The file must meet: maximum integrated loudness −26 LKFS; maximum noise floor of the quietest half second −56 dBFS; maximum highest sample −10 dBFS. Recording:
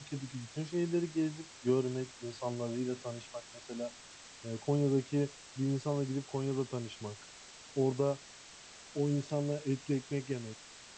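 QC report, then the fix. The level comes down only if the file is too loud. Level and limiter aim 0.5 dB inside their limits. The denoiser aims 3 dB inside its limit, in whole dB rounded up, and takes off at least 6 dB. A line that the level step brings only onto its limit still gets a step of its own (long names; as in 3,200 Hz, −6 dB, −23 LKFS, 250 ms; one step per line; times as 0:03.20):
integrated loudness −36.0 LKFS: in spec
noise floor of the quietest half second −53 dBFS: out of spec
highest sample −18.5 dBFS: in spec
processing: broadband denoise 6 dB, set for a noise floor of −53 dBFS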